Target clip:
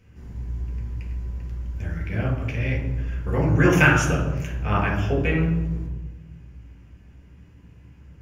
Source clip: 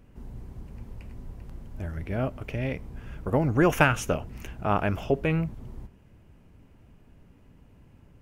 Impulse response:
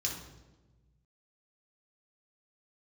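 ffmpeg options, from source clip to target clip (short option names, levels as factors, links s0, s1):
-filter_complex "[0:a]equalizer=f=1800:t=o:w=1.1:g=6.5[s0];[1:a]atrim=start_sample=2205[s1];[s0][s1]afir=irnorm=-1:irlink=0,volume=0.794"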